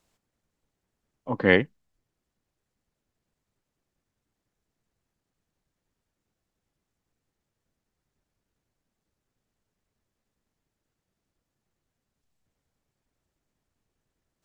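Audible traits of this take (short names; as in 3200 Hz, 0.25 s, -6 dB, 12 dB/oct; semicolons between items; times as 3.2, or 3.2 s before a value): noise floor -84 dBFS; spectral tilt -4.0 dB/oct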